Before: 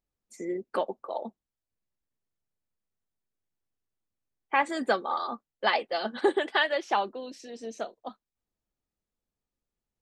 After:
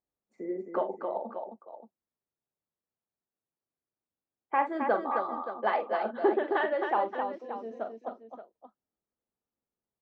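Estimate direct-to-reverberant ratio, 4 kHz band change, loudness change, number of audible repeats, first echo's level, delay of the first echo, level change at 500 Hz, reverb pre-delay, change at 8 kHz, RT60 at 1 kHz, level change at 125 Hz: no reverb, -16.0 dB, -1.5 dB, 3, -8.5 dB, 43 ms, +0.5 dB, no reverb, under -25 dB, no reverb, no reading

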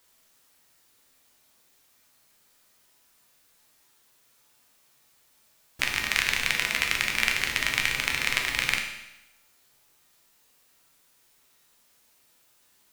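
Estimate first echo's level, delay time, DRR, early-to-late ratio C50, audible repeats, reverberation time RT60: no echo, no echo, 1.5 dB, 5.5 dB, no echo, 0.95 s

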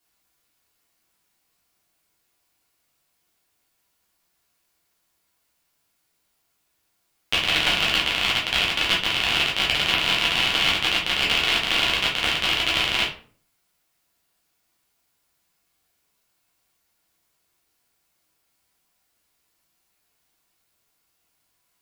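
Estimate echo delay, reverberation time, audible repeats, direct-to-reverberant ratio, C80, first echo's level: no echo, 0.45 s, no echo, -5.5 dB, 13.0 dB, no echo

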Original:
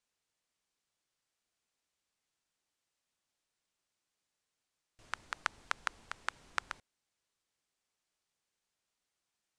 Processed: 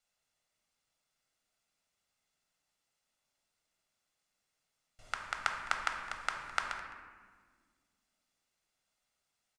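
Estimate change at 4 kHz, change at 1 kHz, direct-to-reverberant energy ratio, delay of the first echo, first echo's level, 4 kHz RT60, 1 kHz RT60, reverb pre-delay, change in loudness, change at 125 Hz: +2.5 dB, +4.5 dB, 2.5 dB, 211 ms, -18.0 dB, 0.95 s, 1.5 s, 4 ms, +3.5 dB, +3.5 dB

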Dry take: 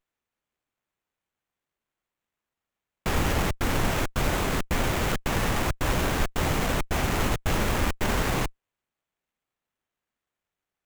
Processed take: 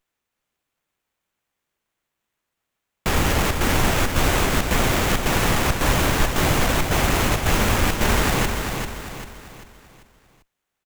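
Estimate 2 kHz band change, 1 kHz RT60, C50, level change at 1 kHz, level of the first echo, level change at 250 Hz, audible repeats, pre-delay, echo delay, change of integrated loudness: +7.0 dB, no reverb, no reverb, +6.5 dB, -6.0 dB, +5.5 dB, 4, no reverb, 393 ms, +6.5 dB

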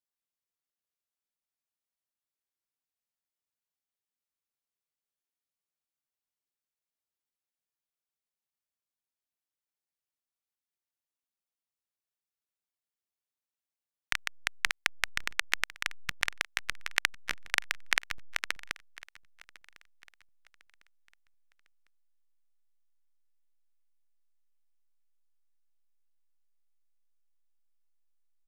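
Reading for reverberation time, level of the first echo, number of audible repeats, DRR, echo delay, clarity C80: no reverb, -22.0 dB, 2, no reverb, 1052 ms, no reverb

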